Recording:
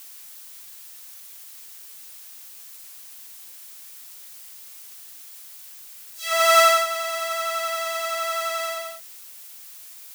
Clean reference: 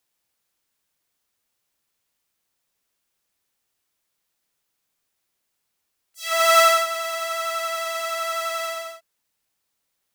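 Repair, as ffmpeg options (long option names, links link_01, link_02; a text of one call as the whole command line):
ffmpeg -i in.wav -af "afftdn=noise_reduction=30:noise_floor=-43" out.wav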